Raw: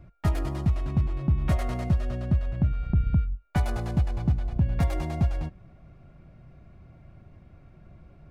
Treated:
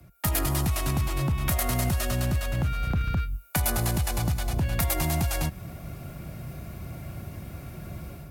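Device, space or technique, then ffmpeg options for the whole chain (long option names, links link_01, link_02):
FM broadcast chain: -filter_complex "[0:a]highpass=51,dynaudnorm=framelen=100:gausssize=5:maxgain=14dB,acrossover=split=96|230|650|4500[link_01][link_02][link_03][link_04][link_05];[link_01]acompressor=threshold=-26dB:ratio=4[link_06];[link_02]acompressor=threshold=-27dB:ratio=4[link_07];[link_03]acompressor=threshold=-38dB:ratio=4[link_08];[link_04]acompressor=threshold=-31dB:ratio=4[link_09];[link_05]acompressor=threshold=-49dB:ratio=4[link_10];[link_06][link_07][link_08][link_09][link_10]amix=inputs=5:normalize=0,aemphasis=mode=production:type=50fm,alimiter=limit=-17dB:level=0:latency=1:release=55,asoftclip=type=hard:threshold=-20dB,lowpass=frequency=15000:width=0.5412,lowpass=frequency=15000:width=1.3066,aemphasis=mode=production:type=50fm"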